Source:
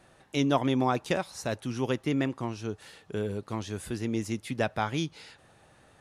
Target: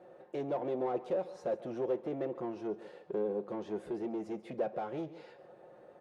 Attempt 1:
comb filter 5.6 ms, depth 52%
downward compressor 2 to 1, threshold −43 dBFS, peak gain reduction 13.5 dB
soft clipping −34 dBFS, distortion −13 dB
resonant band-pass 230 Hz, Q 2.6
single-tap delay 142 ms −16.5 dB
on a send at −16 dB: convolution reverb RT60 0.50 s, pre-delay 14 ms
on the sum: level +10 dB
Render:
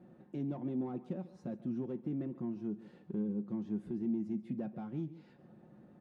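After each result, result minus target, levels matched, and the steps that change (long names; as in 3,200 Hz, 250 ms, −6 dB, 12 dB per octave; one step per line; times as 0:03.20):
500 Hz band −9.0 dB; downward compressor: peak gain reduction +6 dB
change: resonant band-pass 490 Hz, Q 2.6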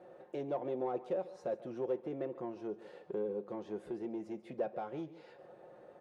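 downward compressor: peak gain reduction +6 dB
change: downward compressor 2 to 1, threshold −31 dBFS, peak gain reduction 7.5 dB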